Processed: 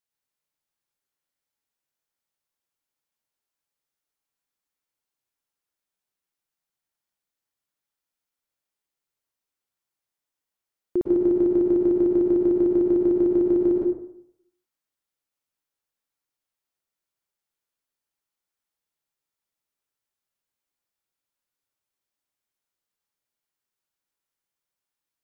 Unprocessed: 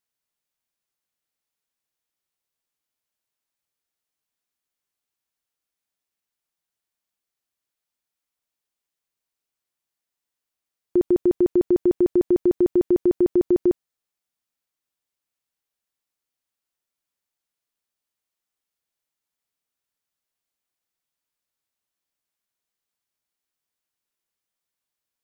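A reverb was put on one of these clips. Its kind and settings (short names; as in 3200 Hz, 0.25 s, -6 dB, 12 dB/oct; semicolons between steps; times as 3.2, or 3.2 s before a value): plate-style reverb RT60 0.72 s, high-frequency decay 0.45×, pre-delay 95 ms, DRR -1 dB; gain -4.5 dB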